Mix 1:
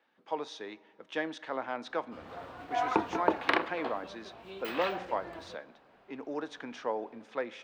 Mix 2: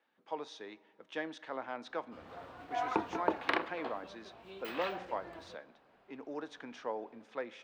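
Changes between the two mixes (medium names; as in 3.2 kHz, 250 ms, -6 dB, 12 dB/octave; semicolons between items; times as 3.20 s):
speech -5.0 dB; background -4.5 dB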